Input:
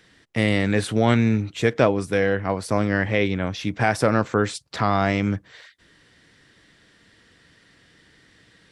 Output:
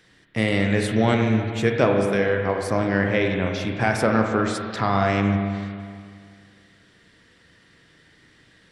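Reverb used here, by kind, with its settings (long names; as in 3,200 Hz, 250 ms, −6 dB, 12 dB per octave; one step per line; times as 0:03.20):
spring reverb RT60 2.1 s, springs 32/40/45 ms, chirp 55 ms, DRR 2.5 dB
level −1.5 dB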